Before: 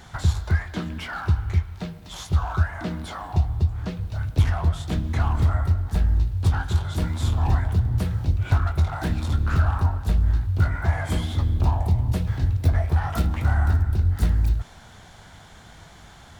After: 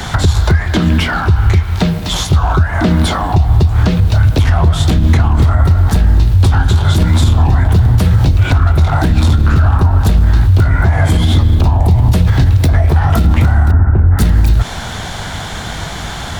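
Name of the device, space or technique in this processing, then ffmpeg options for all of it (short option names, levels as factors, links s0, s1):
mastering chain: -filter_complex "[0:a]equalizer=f=3600:t=o:w=0.77:g=2,acrossover=split=120|460[s0][s1][s2];[s0]acompressor=threshold=0.0501:ratio=4[s3];[s1]acompressor=threshold=0.0224:ratio=4[s4];[s2]acompressor=threshold=0.00891:ratio=4[s5];[s3][s4][s5]amix=inputs=3:normalize=0,acompressor=threshold=0.0355:ratio=2,alimiter=level_in=16.8:limit=0.891:release=50:level=0:latency=1,asettb=1/sr,asplit=3[s6][s7][s8];[s6]atrim=end=13.714[s9];[s7]atrim=start=13.71:end=14.19,asetpts=PTS-STARTPTS,afade=t=in:d=0.004:c=qsin,afade=t=out:st=0.476:d=0.004:c=qsin,lowpass=f=1700:w=0.5412,lowpass=f=1700:w=1.3066[s10];[s8]atrim=start=14.186[s11];[s9][s10]acrossfade=d=0.004:c1=hsin:c2=qsin[s12];[s12][s11]acrossfade=d=0.004:c1=qsin:c2=hsin,volume=0.891"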